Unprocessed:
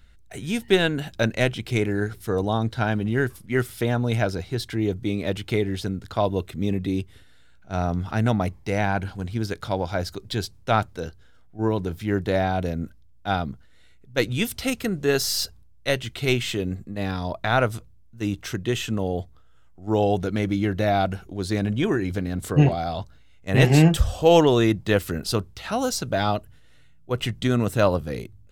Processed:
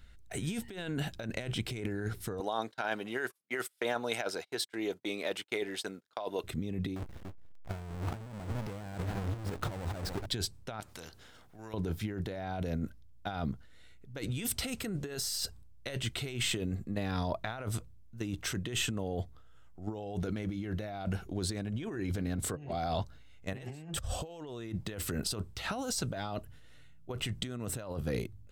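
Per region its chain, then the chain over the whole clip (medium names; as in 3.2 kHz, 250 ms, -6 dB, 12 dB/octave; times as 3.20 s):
2.40–6.44 s: gate -34 dBFS, range -32 dB + high-pass 520 Hz
6.96–10.26 s: square wave that keeps the level + treble shelf 2.5 kHz -9 dB + delay 288 ms -19.5 dB
10.80–11.74 s: compression 2:1, threshold -41 dBFS + spectrum-flattening compressor 2:1
whole clip: dynamic bell 8.1 kHz, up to +8 dB, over -58 dBFS, Q 6.5; compressor with a negative ratio -29 dBFS, ratio -1; trim -7.5 dB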